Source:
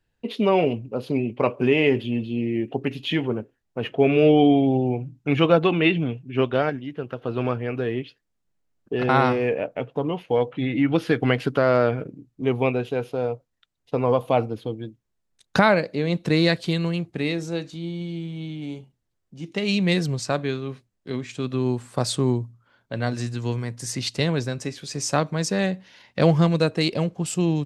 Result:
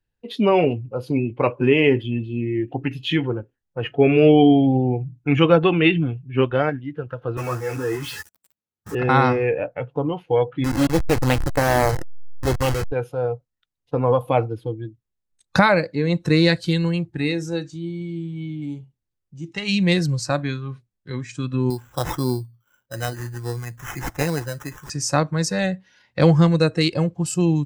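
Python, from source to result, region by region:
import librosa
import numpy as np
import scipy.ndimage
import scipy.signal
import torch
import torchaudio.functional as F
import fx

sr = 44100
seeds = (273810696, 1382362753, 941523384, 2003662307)

y = fx.chain(x, sr, fx.zero_step(step_db=-26.0),
    fx.highpass(hz=95.0, slope=12),
    fx.ensemble(), at=(7.37, 8.95))
y = fx.chain(y, sr, fx.delta_hold(step_db=-20.5),
    fx.doppler_dist(depth_ms=0.69), at=(10.64, 12.92))
y = fx.chain(y, sr, fx.lowpass(hz=6500.0, slope=12),
    fx.low_shelf(hz=170.0, db=-9.5),
    fx.sample_hold(seeds[0], rate_hz=4500.0, jitter_pct=0), at=(21.7, 24.9))
y = fx.notch(y, sr, hz=660.0, q=12.0)
y = fx.noise_reduce_blind(y, sr, reduce_db=11)
y = fx.low_shelf(y, sr, hz=110.0, db=5.0)
y = y * librosa.db_to_amplitude(2.5)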